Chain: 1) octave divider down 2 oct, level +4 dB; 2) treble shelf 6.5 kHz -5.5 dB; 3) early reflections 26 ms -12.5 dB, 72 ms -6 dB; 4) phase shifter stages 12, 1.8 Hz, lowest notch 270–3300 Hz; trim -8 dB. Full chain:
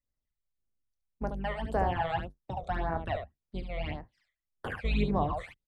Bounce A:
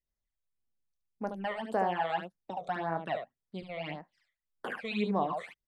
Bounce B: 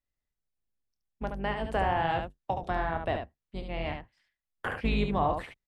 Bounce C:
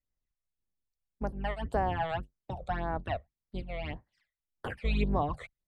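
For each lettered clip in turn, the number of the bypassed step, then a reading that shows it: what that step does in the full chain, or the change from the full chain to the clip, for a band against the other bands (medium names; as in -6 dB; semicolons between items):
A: 1, 125 Hz band -8.5 dB; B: 4, 125 Hz band -3.5 dB; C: 3, momentary loudness spread change +2 LU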